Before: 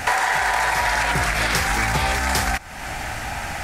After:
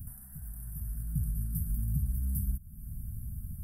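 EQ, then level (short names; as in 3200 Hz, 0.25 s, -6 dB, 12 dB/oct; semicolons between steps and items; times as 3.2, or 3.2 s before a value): inverse Chebyshev band-stop 420–7100 Hz, stop band 40 dB; fixed phaser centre 930 Hz, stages 4; -3.5 dB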